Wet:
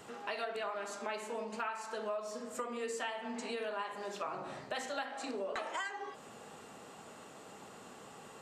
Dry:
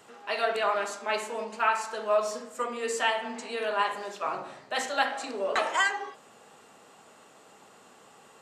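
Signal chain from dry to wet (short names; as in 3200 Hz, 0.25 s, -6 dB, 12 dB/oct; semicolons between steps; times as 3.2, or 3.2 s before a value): low shelf 300 Hz +7.5 dB; compressor 6:1, threshold -38 dBFS, peak gain reduction 18 dB; gain +1 dB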